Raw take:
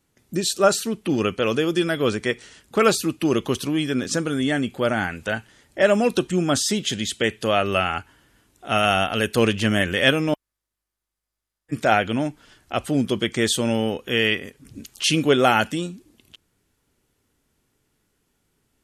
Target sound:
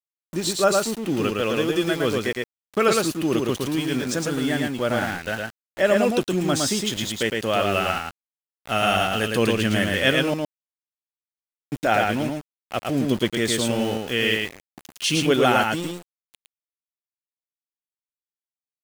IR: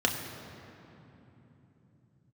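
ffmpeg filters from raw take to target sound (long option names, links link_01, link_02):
-af "aeval=exprs='val(0)*gte(abs(val(0)),0.0316)':channel_layout=same,aecho=1:1:111:0.708,volume=-2.5dB"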